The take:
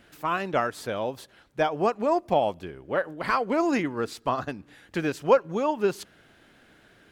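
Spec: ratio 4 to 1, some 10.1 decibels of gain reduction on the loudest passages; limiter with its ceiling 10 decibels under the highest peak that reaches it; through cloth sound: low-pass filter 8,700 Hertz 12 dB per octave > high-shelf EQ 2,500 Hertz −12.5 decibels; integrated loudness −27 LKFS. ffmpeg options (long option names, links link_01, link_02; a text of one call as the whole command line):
ffmpeg -i in.wav -af "acompressor=threshold=-25dB:ratio=4,alimiter=limit=-23.5dB:level=0:latency=1,lowpass=8700,highshelf=frequency=2500:gain=-12.5,volume=8.5dB" out.wav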